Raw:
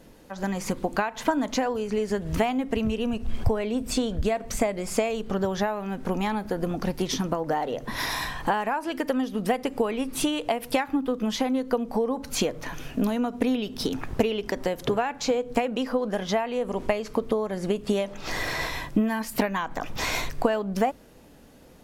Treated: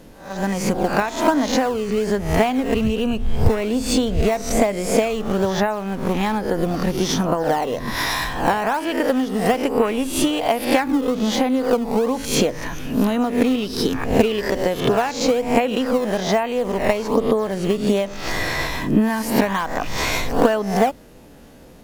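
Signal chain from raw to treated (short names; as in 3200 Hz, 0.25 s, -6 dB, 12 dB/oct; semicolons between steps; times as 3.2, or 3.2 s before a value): spectral swells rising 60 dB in 0.49 s; in parallel at -11.5 dB: decimation with a swept rate 16×, swing 160% 1.2 Hz; on the sum: gain +3.5 dB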